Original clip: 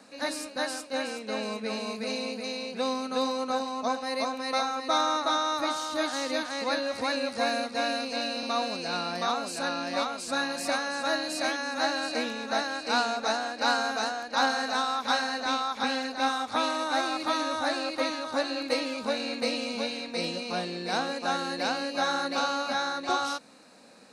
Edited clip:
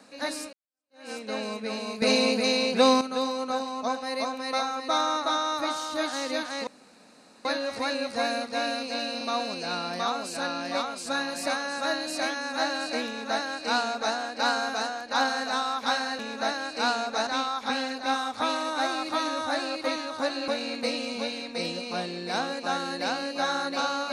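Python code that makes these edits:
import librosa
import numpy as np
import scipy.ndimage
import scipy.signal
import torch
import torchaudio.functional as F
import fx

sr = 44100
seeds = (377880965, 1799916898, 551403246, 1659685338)

y = fx.edit(x, sr, fx.fade_in_span(start_s=0.53, length_s=0.58, curve='exp'),
    fx.clip_gain(start_s=2.02, length_s=0.99, db=10.0),
    fx.insert_room_tone(at_s=6.67, length_s=0.78),
    fx.duplicate(start_s=12.29, length_s=1.08, to_s=15.41),
    fx.cut(start_s=18.62, length_s=0.45), tone=tone)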